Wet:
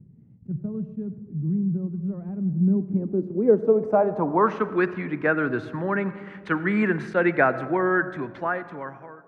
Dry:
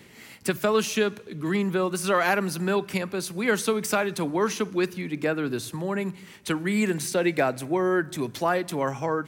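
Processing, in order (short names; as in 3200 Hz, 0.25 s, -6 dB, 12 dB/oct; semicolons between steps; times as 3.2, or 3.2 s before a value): ending faded out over 1.77 s; 2.48–4.37 dynamic EQ 3500 Hz, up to -7 dB, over -45 dBFS, Q 0.92; low-pass sweep 150 Hz -> 1600 Hz, 2.41–4.76; on a send at -15.5 dB: reverb RT60 1.8 s, pre-delay 77 ms; on the sum: attack slew limiter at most 470 dB/s; gain +1.5 dB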